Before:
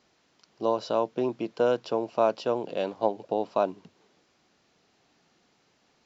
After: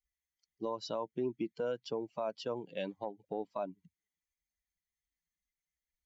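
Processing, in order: per-bin expansion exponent 2; compressor 3:1, threshold -32 dBFS, peak gain reduction 9.5 dB; limiter -27 dBFS, peak gain reduction 7.5 dB; gain +1 dB

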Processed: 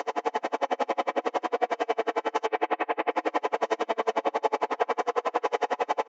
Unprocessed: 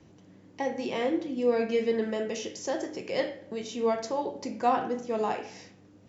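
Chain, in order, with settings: per-bin compression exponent 0.2; 2.46–3.11 EQ curve 1300 Hz 0 dB, 2500 Hz +6 dB, 4200 Hz -18 dB; limiter -17 dBFS, peak gain reduction 10.5 dB; high shelf 3600 Hz -9.5 dB; spring tank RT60 3.6 s, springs 31/47/53 ms, chirp 60 ms, DRR -4.5 dB; soft clip -12 dBFS, distortion -21 dB; HPF 570 Hz 12 dB/oct; comb 7 ms, depth 52%; dB-linear tremolo 11 Hz, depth 39 dB; gain +3 dB

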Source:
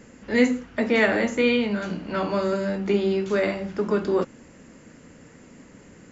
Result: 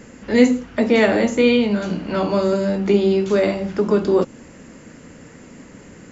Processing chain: dynamic EQ 1700 Hz, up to -7 dB, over -40 dBFS, Q 1.1; gain +6.5 dB

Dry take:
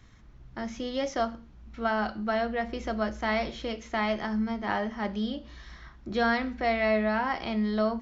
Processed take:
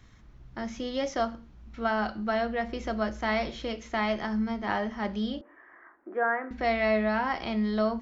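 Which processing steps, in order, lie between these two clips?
5.41–6.51 elliptic band-pass 310–1800 Hz, stop band 40 dB

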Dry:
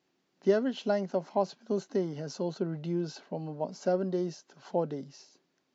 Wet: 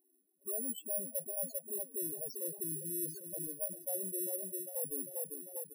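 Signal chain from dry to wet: high shelf 6200 Hz -5.5 dB; feedback echo 0.398 s, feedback 50%, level -13 dB; soft clip -30.5 dBFS, distortion -7 dB; HPF 360 Hz 6 dB/oct; on a send: frequency-shifting echo 0.173 s, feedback 46%, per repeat +40 Hz, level -24 dB; on the sum: dynamic EQ 600 Hz, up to +3 dB, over -48 dBFS, Q 2.8; reverse; compressor 6:1, threshold -45 dBFS, peak gain reduction 14 dB; reverse; careless resampling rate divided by 4×, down none, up zero stuff; loudest bins only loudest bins 16; gain +4.5 dB

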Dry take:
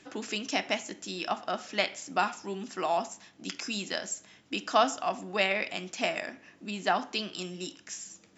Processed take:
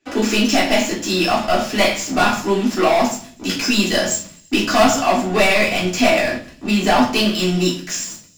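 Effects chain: sample leveller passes 5; thin delay 83 ms, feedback 78%, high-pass 4600 Hz, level -24 dB; reverb RT60 0.45 s, pre-delay 3 ms, DRR -8 dB; gain -8 dB

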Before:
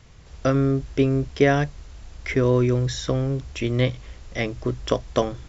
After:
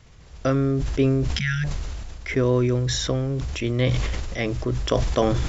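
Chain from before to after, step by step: spectral repair 1.36–1.62, 230–1300 Hz before; sustainer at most 23 dB/s; gain -1.5 dB

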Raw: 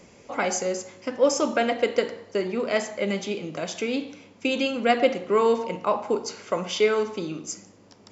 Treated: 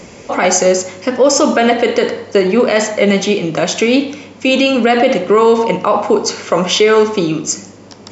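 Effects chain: downsampling 22050 Hz; maximiser +17 dB; gain -1 dB

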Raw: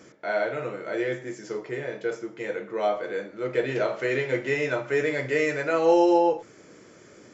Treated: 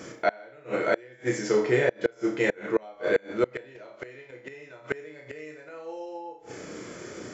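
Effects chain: flutter echo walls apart 5.6 m, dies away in 0.36 s; flipped gate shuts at -19 dBFS, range -29 dB; gain +8.5 dB

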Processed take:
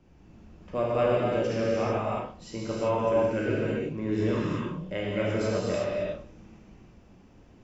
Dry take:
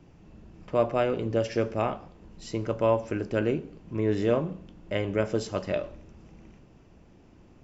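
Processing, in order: non-linear reverb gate 0.4 s flat, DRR -7 dB; spectral repair 4.32–4.82, 400–850 Hz both; gain -6.5 dB

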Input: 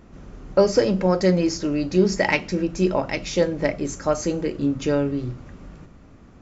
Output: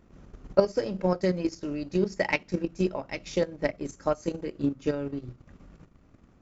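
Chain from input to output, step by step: transient shaper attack +4 dB, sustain -9 dB; level quantiser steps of 9 dB; gain -4.5 dB

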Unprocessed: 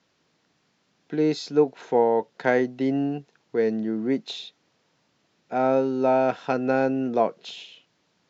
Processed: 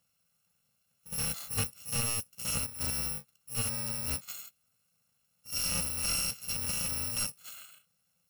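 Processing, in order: FFT order left unsorted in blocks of 128 samples; reverse echo 67 ms -14 dB; slew limiter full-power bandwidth 650 Hz; gain -7 dB

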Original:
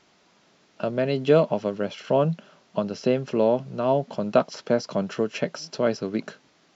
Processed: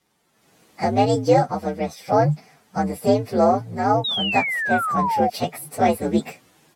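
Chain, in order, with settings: inharmonic rescaling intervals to 123%; painted sound fall, 4.04–5.3, 710–3900 Hz -27 dBFS; AGC gain up to 16.5 dB; gain -4 dB

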